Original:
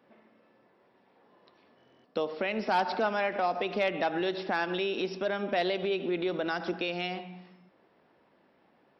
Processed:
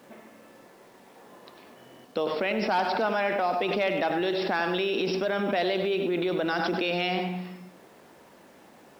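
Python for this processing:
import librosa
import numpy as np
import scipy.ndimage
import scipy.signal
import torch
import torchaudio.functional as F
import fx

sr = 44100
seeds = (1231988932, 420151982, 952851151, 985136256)

p1 = x + 10.0 ** (-11.0 / 20.0) * np.pad(x, (int(99 * sr / 1000.0), 0))[:len(x)]
p2 = fx.over_compress(p1, sr, threshold_db=-38.0, ratio=-1.0)
p3 = p1 + F.gain(torch.from_numpy(p2), 2.0).numpy()
y = fx.quant_dither(p3, sr, seeds[0], bits=10, dither='none')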